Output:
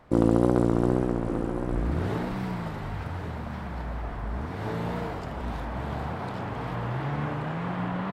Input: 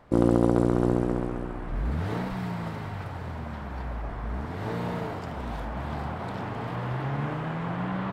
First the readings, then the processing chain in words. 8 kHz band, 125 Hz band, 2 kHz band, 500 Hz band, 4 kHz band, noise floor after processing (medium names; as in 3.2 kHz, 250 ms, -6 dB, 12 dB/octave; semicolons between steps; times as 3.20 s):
+0.5 dB, +0.5 dB, +0.5 dB, +0.5 dB, +0.5 dB, -35 dBFS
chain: wow and flutter 67 cents; delay 1131 ms -10 dB